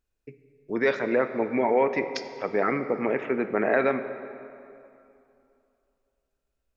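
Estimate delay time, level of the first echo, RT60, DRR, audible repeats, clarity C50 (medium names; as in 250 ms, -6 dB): no echo, no echo, 2.7 s, 9.0 dB, no echo, 10.0 dB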